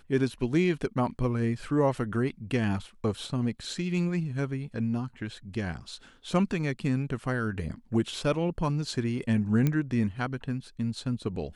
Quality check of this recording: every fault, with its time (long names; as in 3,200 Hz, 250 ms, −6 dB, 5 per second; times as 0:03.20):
0:09.67: click −14 dBFS